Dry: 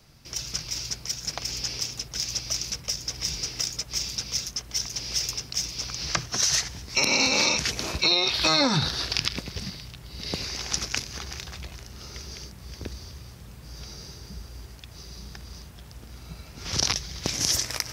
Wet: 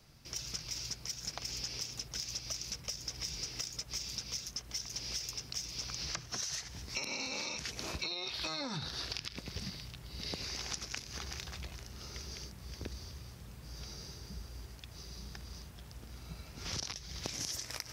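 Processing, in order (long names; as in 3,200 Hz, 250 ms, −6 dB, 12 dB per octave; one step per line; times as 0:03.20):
downward compressor 10 to 1, threshold −30 dBFS, peak gain reduction 13 dB
level −5.5 dB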